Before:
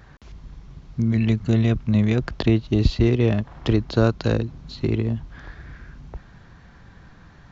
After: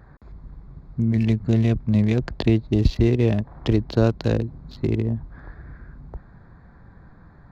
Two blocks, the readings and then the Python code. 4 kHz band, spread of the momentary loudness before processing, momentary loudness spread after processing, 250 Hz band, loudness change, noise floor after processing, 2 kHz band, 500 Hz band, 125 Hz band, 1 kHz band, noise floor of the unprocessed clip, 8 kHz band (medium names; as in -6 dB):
-3.0 dB, 17 LU, 9 LU, 0.0 dB, 0.0 dB, -49 dBFS, -3.0 dB, -0.5 dB, 0.0 dB, -2.0 dB, -48 dBFS, no reading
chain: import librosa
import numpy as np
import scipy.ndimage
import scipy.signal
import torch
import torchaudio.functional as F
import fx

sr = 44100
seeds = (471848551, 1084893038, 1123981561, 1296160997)

y = fx.wiener(x, sr, points=15)
y = fx.dynamic_eq(y, sr, hz=1300.0, q=2.4, threshold_db=-47.0, ratio=4.0, max_db=-6)